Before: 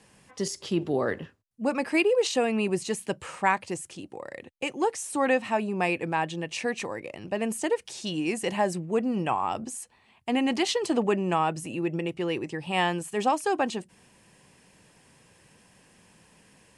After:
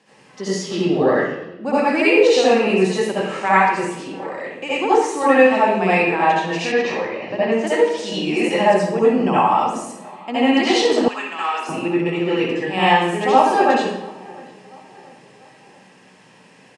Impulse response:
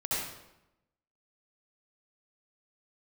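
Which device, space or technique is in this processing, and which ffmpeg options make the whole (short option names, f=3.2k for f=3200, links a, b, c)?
supermarket ceiling speaker: -filter_complex "[0:a]highpass=210,lowpass=5.5k[a];[1:a]atrim=start_sample=2205[b];[a][b]afir=irnorm=-1:irlink=0,asettb=1/sr,asplit=3[c][d][e];[c]atrim=end=6.724[f];[d]atrim=start=6.72:end=7.67,asetpts=PTS-STARTPTS,afade=t=in:d=0.004:c=qsin,afade=t=out:st=0.946:d=0.004:c=qsin,lowpass=f=5.6k:w=0.5412,lowpass=f=5.6k:w=1.3066[g];[e]atrim=start=7.666[h];[f][g]acrossfade=d=0.004:c1=hsin:c2=qsin[i];[i][h]acrossfade=d=0.004:c1=qsin:c2=hsin,asettb=1/sr,asplit=3[j][k][l];[j]atrim=end=11.084[m];[k]atrim=start=11.08:end=11.69,asetpts=PTS-STARTPTS,afade=t=in:d=0.004:c=qsin,afade=t=out:st=0.606:d=0.004:c=qsin,highpass=1.5k[n];[l]atrim=start=11.686[o];[m][n]acrossfade=d=0.004:c1=hsin:c2=qsin[p];[p][o]acrossfade=d=0.004:c1=qsin:c2=hsin,asplit=2[q][r];[r]adelay=689,lowpass=f=2.4k:p=1,volume=-23dB,asplit=2[s][t];[t]adelay=689,lowpass=f=2.4k:p=1,volume=0.5,asplit=2[u][v];[v]adelay=689,lowpass=f=2.4k:p=1,volume=0.5[w];[q][s][u][w]amix=inputs=4:normalize=0,volume=4dB"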